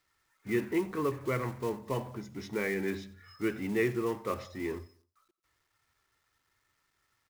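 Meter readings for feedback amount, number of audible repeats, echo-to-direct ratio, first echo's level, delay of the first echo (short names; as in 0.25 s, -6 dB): 38%, 2, -19.5 dB, -20.0 dB, 90 ms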